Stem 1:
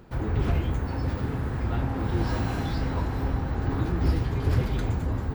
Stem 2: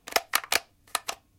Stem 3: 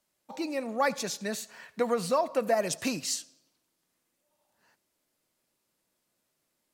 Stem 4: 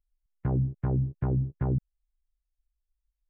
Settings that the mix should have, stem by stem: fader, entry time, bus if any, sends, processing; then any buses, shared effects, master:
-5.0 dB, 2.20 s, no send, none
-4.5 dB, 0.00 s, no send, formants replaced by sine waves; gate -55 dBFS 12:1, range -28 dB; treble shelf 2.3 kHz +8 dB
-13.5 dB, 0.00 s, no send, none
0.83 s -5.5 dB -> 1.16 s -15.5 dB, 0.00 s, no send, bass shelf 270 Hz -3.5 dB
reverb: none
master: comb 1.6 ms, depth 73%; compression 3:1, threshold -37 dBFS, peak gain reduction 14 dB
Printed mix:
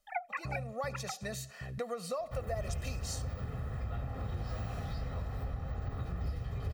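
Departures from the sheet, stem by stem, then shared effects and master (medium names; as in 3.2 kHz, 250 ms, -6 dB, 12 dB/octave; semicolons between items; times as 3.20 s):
stem 2: missing treble shelf 2.3 kHz +8 dB; stem 3 -13.5 dB -> -4.0 dB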